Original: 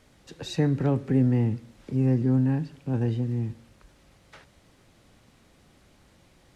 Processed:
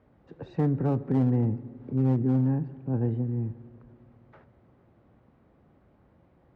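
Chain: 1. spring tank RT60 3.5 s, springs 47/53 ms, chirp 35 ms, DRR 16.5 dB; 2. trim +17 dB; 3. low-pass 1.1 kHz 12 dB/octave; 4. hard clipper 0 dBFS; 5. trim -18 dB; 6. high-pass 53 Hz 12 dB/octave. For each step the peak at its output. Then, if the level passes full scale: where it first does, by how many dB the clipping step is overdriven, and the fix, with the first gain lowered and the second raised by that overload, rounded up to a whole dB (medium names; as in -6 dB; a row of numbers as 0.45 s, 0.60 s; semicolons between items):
-11.5 dBFS, +5.5 dBFS, +5.5 dBFS, 0.0 dBFS, -18.0 dBFS, -15.0 dBFS; step 2, 5.5 dB; step 2 +11 dB, step 5 -12 dB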